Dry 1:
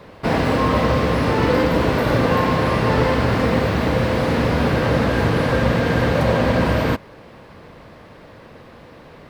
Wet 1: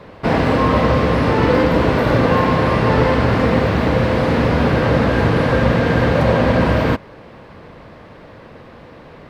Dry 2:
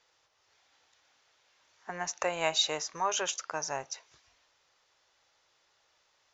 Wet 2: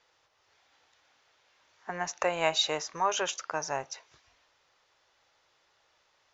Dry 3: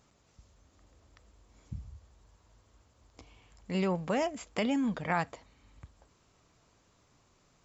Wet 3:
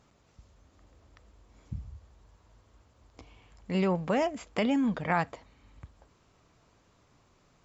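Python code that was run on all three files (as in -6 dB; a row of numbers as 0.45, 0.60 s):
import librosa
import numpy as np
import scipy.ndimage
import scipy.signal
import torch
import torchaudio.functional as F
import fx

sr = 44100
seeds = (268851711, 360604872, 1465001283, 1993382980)

y = fx.lowpass(x, sr, hz=4000.0, slope=6)
y = y * 10.0 ** (3.0 / 20.0)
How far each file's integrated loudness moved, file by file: +3.0, +1.5, +3.0 LU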